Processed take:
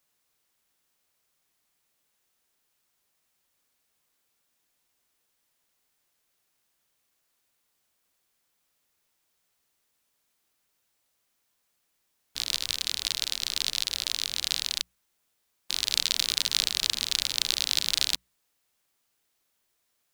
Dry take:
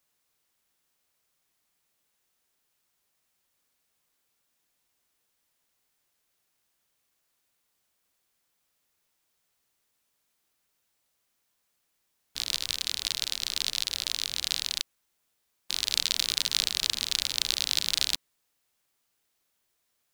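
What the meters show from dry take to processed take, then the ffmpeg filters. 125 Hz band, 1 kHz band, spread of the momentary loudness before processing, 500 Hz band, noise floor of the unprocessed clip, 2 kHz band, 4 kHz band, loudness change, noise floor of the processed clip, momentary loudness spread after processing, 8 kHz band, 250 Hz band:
+0.5 dB, +1.0 dB, 7 LU, +1.0 dB, -77 dBFS, +1.0 dB, +1.0 dB, +1.0 dB, -76 dBFS, 7 LU, +1.0 dB, +1.0 dB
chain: -af "bandreject=f=60:t=h:w=6,bandreject=f=120:t=h:w=6,bandreject=f=180:t=h:w=6,volume=1.12"

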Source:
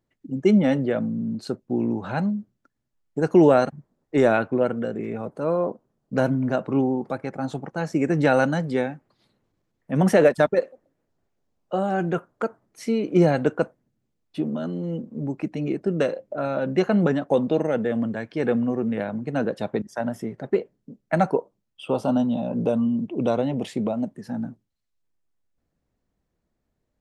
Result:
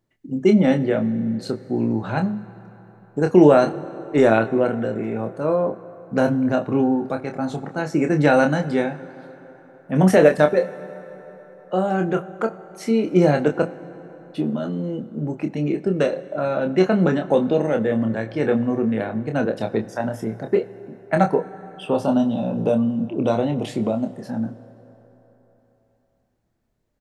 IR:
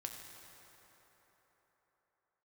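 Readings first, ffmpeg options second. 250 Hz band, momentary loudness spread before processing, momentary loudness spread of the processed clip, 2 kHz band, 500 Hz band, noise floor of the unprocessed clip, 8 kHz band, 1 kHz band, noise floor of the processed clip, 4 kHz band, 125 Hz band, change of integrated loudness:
+3.0 dB, 12 LU, 12 LU, +3.0 dB, +3.0 dB, -78 dBFS, no reading, +3.0 dB, -64 dBFS, +3.0 dB, +3.0 dB, +3.0 dB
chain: -filter_complex "[0:a]asplit=2[s0][s1];[s1]adelay=27,volume=0.473[s2];[s0][s2]amix=inputs=2:normalize=0,asplit=2[s3][s4];[1:a]atrim=start_sample=2205[s5];[s4][s5]afir=irnorm=-1:irlink=0,volume=0.447[s6];[s3][s6]amix=inputs=2:normalize=0"

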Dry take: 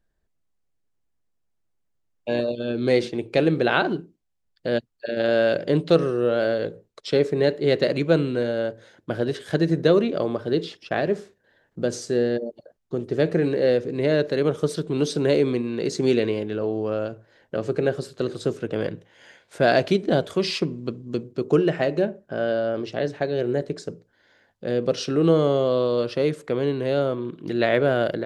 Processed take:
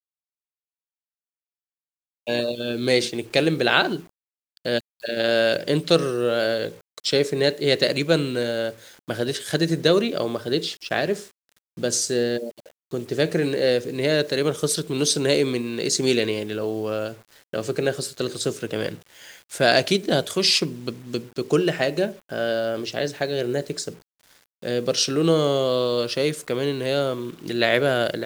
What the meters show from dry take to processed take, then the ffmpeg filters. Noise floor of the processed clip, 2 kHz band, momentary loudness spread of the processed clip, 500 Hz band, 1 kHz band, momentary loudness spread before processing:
under -85 dBFS, +3.5 dB, 11 LU, -1.0 dB, +0.5 dB, 10 LU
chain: -af "crystalizer=i=5.5:c=0,acrusher=bits=7:mix=0:aa=0.000001,volume=0.841"

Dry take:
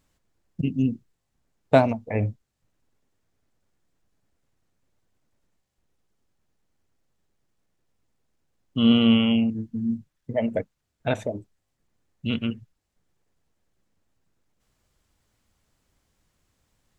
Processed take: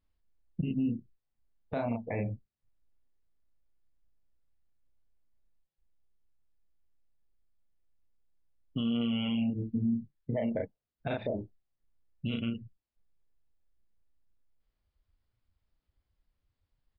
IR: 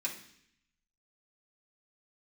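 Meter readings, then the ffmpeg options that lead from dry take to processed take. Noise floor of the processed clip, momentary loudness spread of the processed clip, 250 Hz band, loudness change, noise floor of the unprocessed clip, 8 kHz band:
under -85 dBFS, 11 LU, -9.0 dB, -10.0 dB, -78 dBFS, no reading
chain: -filter_complex "[0:a]asplit=2[s0][s1];[s1]adelay=34,volume=0.75[s2];[s0][s2]amix=inputs=2:normalize=0,acompressor=threshold=0.0562:ratio=6,alimiter=limit=0.075:level=0:latency=1:release=82,aresample=11025,aresample=44100,afftdn=nr=17:nf=-53"

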